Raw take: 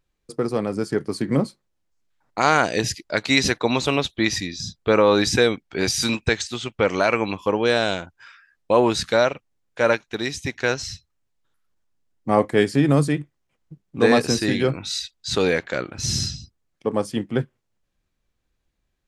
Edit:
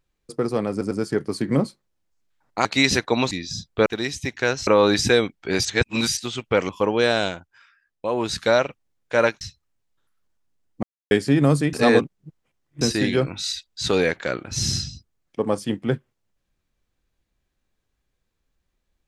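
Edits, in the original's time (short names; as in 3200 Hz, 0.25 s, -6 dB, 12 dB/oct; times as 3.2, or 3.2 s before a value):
0.71 stutter 0.10 s, 3 plays
2.45–3.18 cut
3.84–4.4 cut
5.93–6.45 reverse
6.97–7.35 cut
7.9–9.13 dip -8 dB, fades 0.34 s linear
10.07–10.88 move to 4.95
12.3–12.58 mute
13.2–14.28 reverse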